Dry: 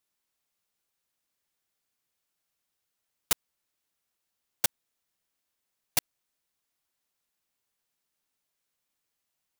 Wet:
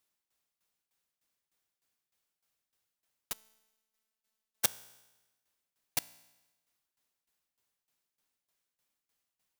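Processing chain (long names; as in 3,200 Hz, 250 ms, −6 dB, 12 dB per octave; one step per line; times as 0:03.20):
shaped tremolo saw down 3.3 Hz, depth 85%
tuned comb filter 59 Hz, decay 1.1 s, harmonics all, mix 40%
0:03.32–0:04.65: phases set to zero 219 Hz
level +6 dB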